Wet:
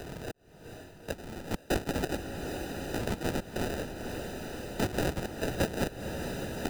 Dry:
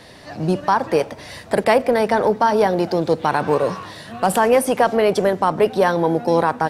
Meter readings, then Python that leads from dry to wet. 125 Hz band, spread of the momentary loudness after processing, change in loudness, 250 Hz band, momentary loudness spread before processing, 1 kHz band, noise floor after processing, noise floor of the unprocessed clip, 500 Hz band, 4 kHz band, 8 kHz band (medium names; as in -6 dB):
-8.5 dB, 11 LU, -16.5 dB, -12.5 dB, 8 LU, -22.0 dB, -55 dBFS, -41 dBFS, -19.0 dB, -9.0 dB, -9.5 dB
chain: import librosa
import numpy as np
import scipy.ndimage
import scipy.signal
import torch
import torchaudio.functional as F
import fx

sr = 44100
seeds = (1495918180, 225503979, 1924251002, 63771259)

p1 = scipy.signal.sosfilt(scipy.signal.butter(4, 3100.0, 'lowpass', fs=sr, output='sos'), x)
p2 = fx.spec_gate(p1, sr, threshold_db=-25, keep='weak')
p3 = fx.tilt_shelf(p2, sr, db=-9.0, hz=870.0)
p4 = fx.level_steps(p3, sr, step_db=24)
p5 = p3 + (p4 * librosa.db_to_amplitude(1.0))
p6 = fx.sample_hold(p5, sr, seeds[0], rate_hz=1100.0, jitter_pct=0)
p7 = fx.step_gate(p6, sr, bpm=97, pattern='xx.....xxx.x', floor_db=-60.0, edge_ms=4.5)
p8 = fx.echo_diffused(p7, sr, ms=465, feedback_pct=59, wet_db=-12)
p9 = fx.band_squash(p8, sr, depth_pct=70)
y = p9 * librosa.db_to_amplitude(1.5)